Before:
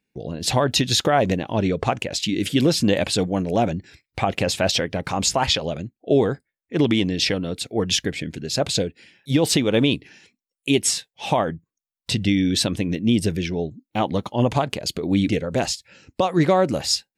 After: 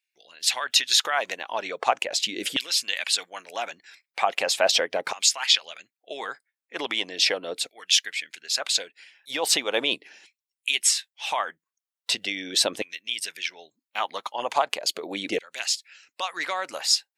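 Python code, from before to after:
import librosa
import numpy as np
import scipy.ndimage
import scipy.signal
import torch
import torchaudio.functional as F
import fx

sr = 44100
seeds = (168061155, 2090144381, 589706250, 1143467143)

y = fx.hpss(x, sr, part='percussive', gain_db=6)
y = fx.filter_lfo_highpass(y, sr, shape='saw_down', hz=0.39, low_hz=500.0, high_hz=2500.0, q=1.1)
y = y * 10.0 ** (-5.0 / 20.0)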